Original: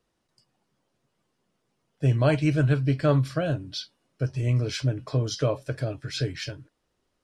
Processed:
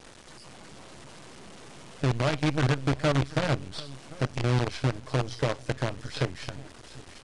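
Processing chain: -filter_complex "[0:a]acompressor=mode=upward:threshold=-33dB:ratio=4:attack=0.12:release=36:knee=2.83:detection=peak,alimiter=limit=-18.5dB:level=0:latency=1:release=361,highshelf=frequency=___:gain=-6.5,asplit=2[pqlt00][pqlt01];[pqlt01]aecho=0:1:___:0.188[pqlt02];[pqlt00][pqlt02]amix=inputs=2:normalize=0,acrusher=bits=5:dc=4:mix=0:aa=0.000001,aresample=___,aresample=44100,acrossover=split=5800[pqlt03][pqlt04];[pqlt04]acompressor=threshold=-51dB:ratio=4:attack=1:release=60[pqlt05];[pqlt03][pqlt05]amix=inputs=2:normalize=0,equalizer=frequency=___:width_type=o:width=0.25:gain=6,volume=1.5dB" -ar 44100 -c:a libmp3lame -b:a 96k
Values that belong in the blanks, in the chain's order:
7200, 742, 22050, 74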